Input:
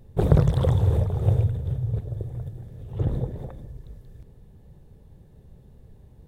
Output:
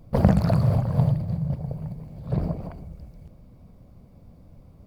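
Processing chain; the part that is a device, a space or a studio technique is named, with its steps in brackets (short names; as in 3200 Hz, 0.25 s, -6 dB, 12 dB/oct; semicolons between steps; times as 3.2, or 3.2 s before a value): nightcore (varispeed +29%)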